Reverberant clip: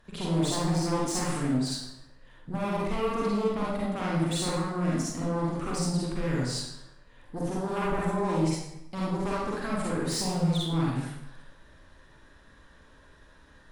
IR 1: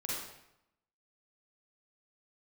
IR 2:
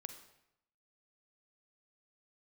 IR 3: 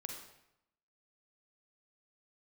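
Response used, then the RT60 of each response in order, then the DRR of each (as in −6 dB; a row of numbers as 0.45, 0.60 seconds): 1; 0.80, 0.80, 0.80 seconds; −6.0, 7.5, 2.0 decibels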